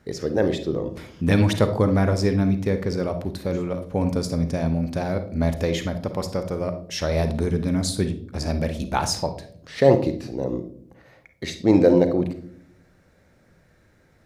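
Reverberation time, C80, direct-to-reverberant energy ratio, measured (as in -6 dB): no single decay rate, 15.5 dB, 8.5 dB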